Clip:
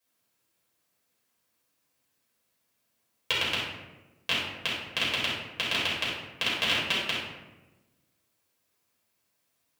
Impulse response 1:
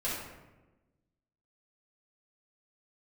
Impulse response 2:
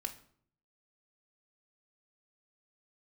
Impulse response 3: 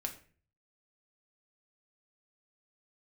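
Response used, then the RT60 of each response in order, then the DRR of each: 1; 1.1, 0.60, 0.40 seconds; −9.0, 3.0, 2.0 decibels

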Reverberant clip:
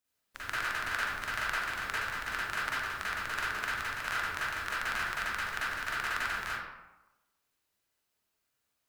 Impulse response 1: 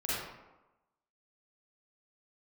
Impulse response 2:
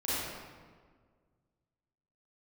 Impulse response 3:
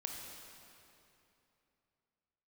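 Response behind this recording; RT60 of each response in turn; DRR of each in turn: 1; 1.1, 1.7, 2.9 seconds; −9.5, −11.5, 0.5 decibels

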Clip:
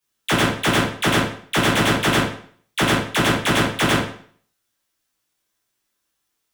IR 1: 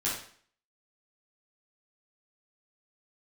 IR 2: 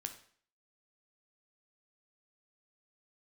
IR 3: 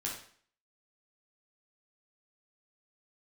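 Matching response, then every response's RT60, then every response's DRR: 1; 0.50, 0.50, 0.50 seconds; −8.0, 6.5, −3.5 decibels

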